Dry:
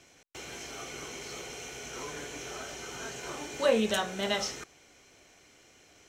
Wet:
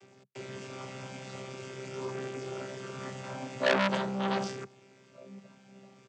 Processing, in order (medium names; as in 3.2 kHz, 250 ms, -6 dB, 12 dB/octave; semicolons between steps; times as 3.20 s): vocoder on a held chord bare fifth, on C3; echo from a far wall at 260 m, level -29 dB; transformer saturation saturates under 2.5 kHz; trim +6 dB